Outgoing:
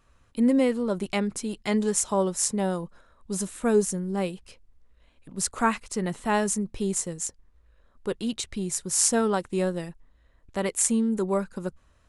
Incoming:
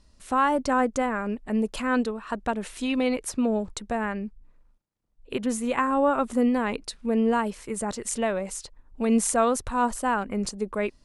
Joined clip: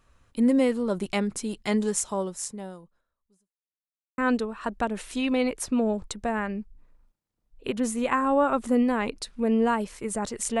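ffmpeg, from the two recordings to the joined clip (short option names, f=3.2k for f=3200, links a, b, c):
-filter_complex "[0:a]apad=whole_dur=10.6,atrim=end=10.6,asplit=2[a][b];[a]atrim=end=3.56,asetpts=PTS-STARTPTS,afade=t=out:st=1.75:d=1.81:c=qua[c];[b]atrim=start=3.56:end=4.18,asetpts=PTS-STARTPTS,volume=0[d];[1:a]atrim=start=1.84:end=8.26,asetpts=PTS-STARTPTS,afade=t=in:d=0.004:c=hsin[e];[c][d][e]concat=n=3:v=0:a=1"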